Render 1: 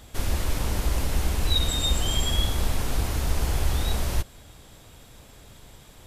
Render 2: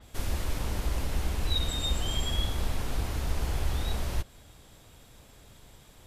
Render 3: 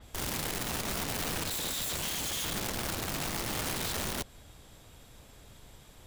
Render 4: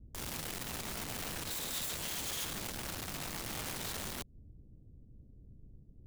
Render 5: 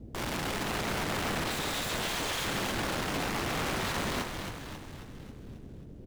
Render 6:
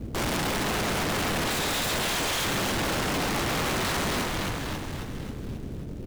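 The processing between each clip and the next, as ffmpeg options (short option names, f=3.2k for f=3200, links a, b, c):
-af "adynamicequalizer=threshold=0.00708:dfrequency=5200:dqfactor=0.7:tfrequency=5200:tqfactor=0.7:attack=5:release=100:ratio=0.375:range=2:mode=cutabove:tftype=highshelf,volume=-5dB"
-af "aeval=exprs='(mod(29.9*val(0)+1,2)-1)/29.9':c=same"
-filter_complex "[0:a]acrossover=split=340[a][b];[b]acrusher=bits=5:mix=0:aa=0.000001[c];[a][c]amix=inputs=2:normalize=0,alimiter=level_in=5dB:limit=-24dB:level=0:latency=1:release=167,volume=-5dB"
-filter_complex "[0:a]asplit=2[a][b];[b]highpass=f=720:p=1,volume=25dB,asoftclip=type=tanh:threshold=-28.5dB[c];[a][c]amix=inputs=2:normalize=0,lowpass=f=2.1k:p=1,volume=-6dB,asplit=8[d][e][f][g][h][i][j][k];[e]adelay=270,afreqshift=-53,volume=-6dB[l];[f]adelay=540,afreqshift=-106,volume=-11.2dB[m];[g]adelay=810,afreqshift=-159,volume=-16.4dB[n];[h]adelay=1080,afreqshift=-212,volume=-21.6dB[o];[i]adelay=1350,afreqshift=-265,volume=-26.8dB[p];[j]adelay=1620,afreqshift=-318,volume=-32dB[q];[k]adelay=1890,afreqshift=-371,volume=-37.2dB[r];[d][l][m][n][o][p][q][r]amix=inputs=8:normalize=0,volume=6dB"
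-filter_complex "[0:a]asplit=2[a][b];[b]acrusher=bits=2:mode=log:mix=0:aa=0.000001,volume=-8dB[c];[a][c]amix=inputs=2:normalize=0,asoftclip=type=hard:threshold=-33dB,volume=7.5dB"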